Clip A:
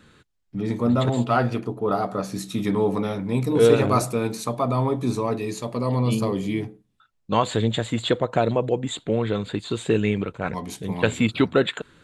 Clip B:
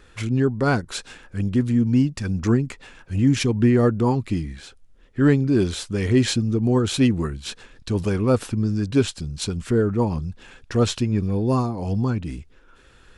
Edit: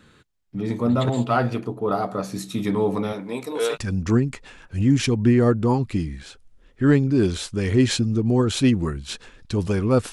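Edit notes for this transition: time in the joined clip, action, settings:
clip A
3.12–3.78 s: high-pass 200 Hz -> 930 Hz
3.75 s: go over to clip B from 2.12 s, crossfade 0.06 s

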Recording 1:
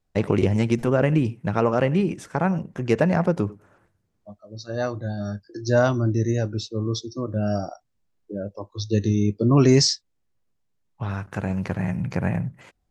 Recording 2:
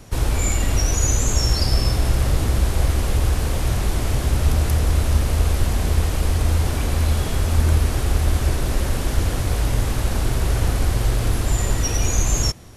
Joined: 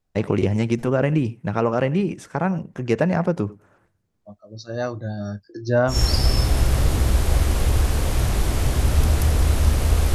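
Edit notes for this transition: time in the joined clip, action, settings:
recording 1
5.52–5.99 s: low-pass 6.5 kHz -> 1.5 kHz
5.93 s: go over to recording 2 from 1.41 s, crossfade 0.12 s

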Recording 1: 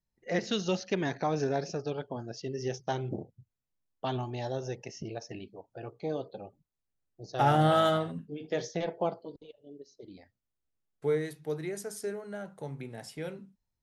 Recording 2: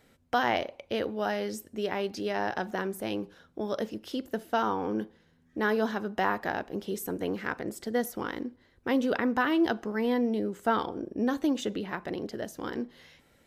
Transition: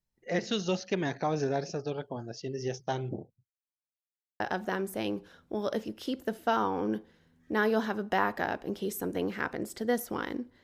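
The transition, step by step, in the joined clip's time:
recording 1
3.04–3.54 s: studio fade out
3.54–4.40 s: mute
4.40 s: go over to recording 2 from 2.46 s

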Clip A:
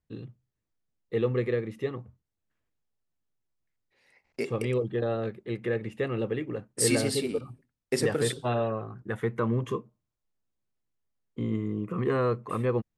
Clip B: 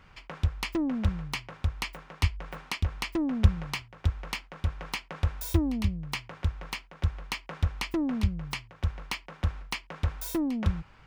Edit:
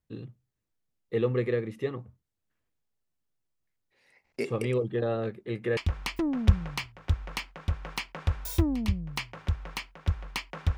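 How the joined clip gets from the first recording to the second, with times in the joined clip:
clip A
5.35–5.77 s: doubling 19 ms -13 dB
5.77 s: go over to clip B from 2.73 s

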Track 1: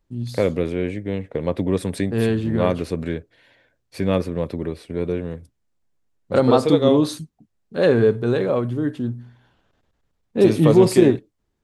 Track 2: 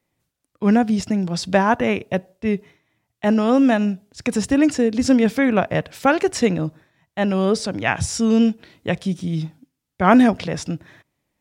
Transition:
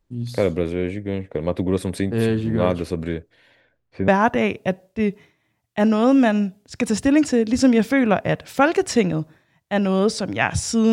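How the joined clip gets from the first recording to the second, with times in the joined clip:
track 1
3.60–4.08 s: low-pass 6.2 kHz -> 1.3 kHz
4.08 s: go over to track 2 from 1.54 s

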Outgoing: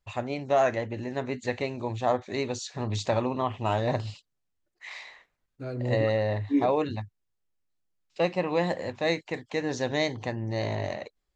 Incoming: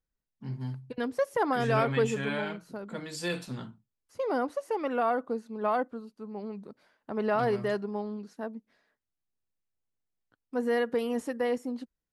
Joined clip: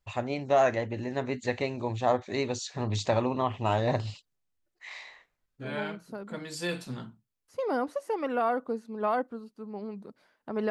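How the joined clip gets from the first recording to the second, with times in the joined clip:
outgoing
4.36–5.80 s: harmonic-percussive split percussive -4 dB
5.70 s: go over to incoming from 2.31 s, crossfade 0.20 s

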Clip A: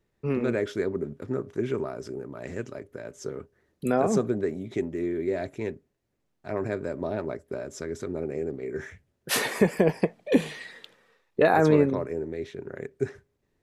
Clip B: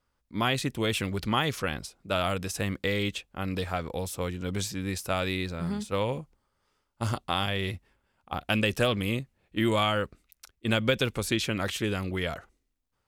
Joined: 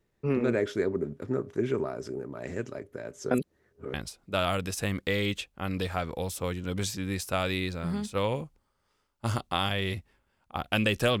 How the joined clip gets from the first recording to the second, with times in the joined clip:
clip A
3.31–3.94 s: reverse
3.94 s: go over to clip B from 1.71 s

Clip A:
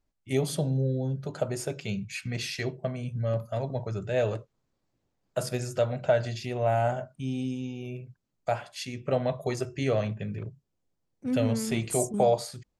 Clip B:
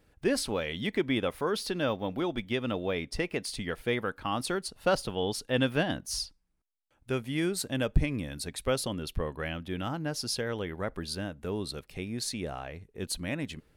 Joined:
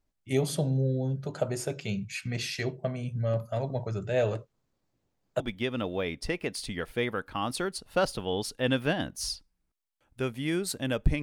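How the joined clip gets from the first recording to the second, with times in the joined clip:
clip A
5.40 s: go over to clip B from 2.30 s

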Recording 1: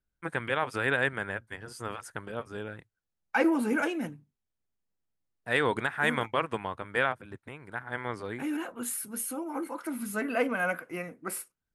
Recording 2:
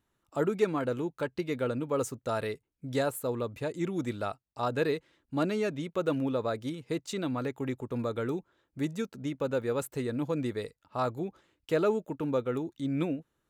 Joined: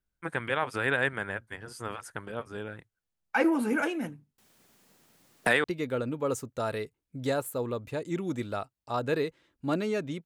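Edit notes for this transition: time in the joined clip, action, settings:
recording 1
4.38–5.64 s: three bands compressed up and down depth 100%
5.64 s: go over to recording 2 from 1.33 s

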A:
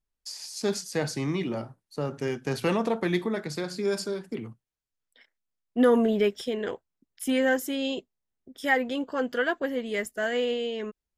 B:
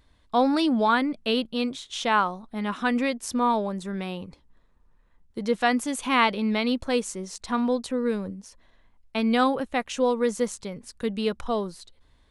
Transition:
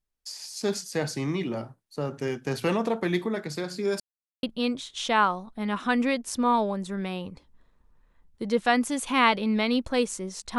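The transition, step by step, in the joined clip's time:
A
4.00–4.43 s: mute
4.43 s: go over to B from 1.39 s

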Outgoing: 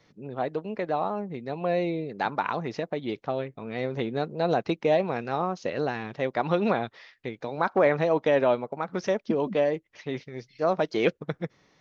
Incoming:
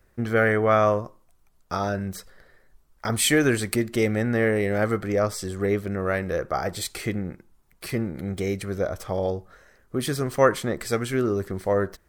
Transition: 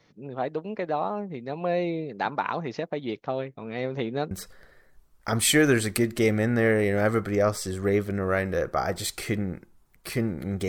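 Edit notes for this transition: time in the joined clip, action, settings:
outgoing
4.31 s: go over to incoming from 2.08 s

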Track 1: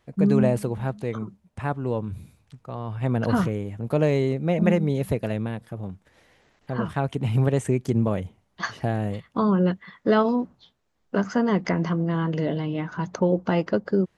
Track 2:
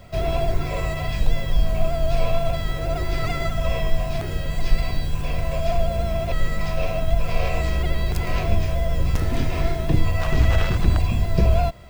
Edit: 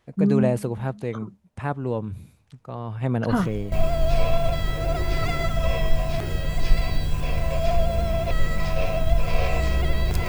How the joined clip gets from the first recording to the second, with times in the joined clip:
track 1
3.31 s: add track 2 from 1.32 s 0.41 s -17 dB
3.72 s: go over to track 2 from 1.73 s

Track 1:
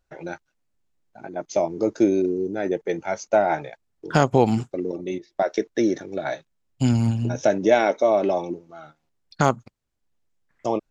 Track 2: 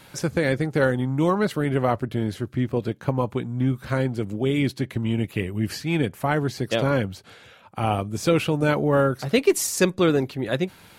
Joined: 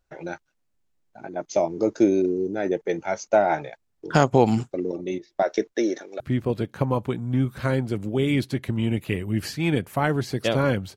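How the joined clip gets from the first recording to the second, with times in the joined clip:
track 1
5.72–6.20 s: high-pass 250 Hz -> 610 Hz
6.20 s: go over to track 2 from 2.47 s

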